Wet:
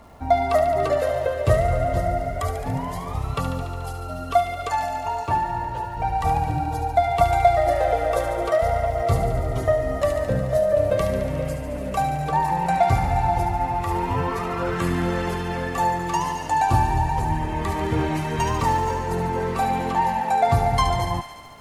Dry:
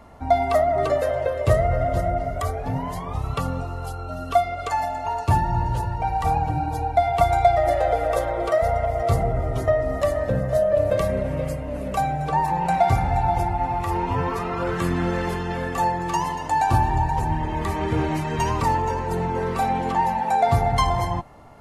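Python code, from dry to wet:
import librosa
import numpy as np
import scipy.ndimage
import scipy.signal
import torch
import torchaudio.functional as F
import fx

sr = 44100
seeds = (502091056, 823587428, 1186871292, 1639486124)

y = fx.bass_treble(x, sr, bass_db=-11, treble_db=-12, at=(5.26, 5.97))
y = fx.dmg_crackle(y, sr, seeds[0], per_s=460.0, level_db=-49.0)
y = fx.echo_wet_highpass(y, sr, ms=72, feedback_pct=78, hz=1700.0, wet_db=-7.5)
y = fx.quant_companded(y, sr, bits=8, at=(18.47, 18.94))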